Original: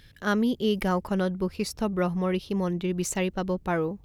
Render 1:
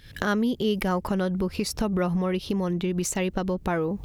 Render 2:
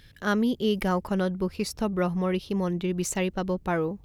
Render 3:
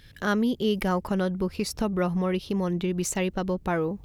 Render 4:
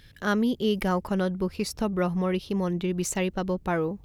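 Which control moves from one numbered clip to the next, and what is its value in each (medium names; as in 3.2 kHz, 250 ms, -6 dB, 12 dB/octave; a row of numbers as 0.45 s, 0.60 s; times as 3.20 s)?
recorder AGC, rising by: 87 dB/s, 5.2 dB/s, 33 dB/s, 13 dB/s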